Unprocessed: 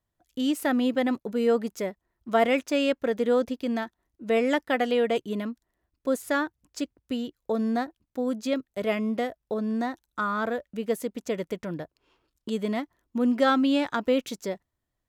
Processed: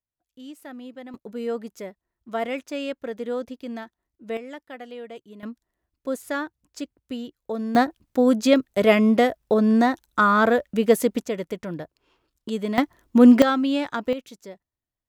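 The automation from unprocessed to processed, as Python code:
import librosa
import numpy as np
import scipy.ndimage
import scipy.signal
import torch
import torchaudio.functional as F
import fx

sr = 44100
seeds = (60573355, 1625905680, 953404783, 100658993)

y = fx.gain(x, sr, db=fx.steps((0.0, -15.0), (1.14, -5.5), (4.37, -14.0), (5.43, -2.0), (7.75, 10.0), (11.23, 1.5), (12.78, 12.0), (13.42, 0.0), (14.13, -9.0)))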